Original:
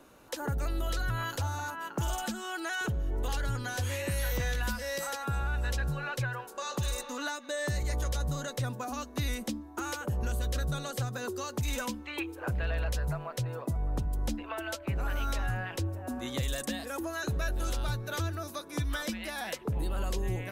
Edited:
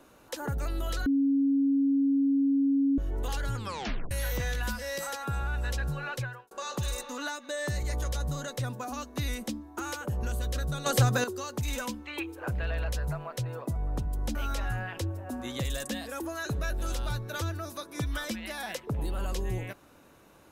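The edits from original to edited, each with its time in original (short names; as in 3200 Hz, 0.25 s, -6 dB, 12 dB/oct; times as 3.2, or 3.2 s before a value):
1.06–2.98 bleep 276 Hz -21.5 dBFS
3.56 tape stop 0.55 s
6.15–6.51 fade out linear
10.86–11.24 gain +10.5 dB
14.35–15.13 cut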